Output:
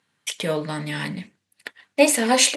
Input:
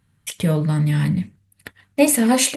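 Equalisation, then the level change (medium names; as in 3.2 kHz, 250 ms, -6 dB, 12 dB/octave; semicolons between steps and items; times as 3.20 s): band-pass 380–5900 Hz; treble shelf 4.1 kHz +7 dB; band-stop 1.3 kHz, Q 17; +1.5 dB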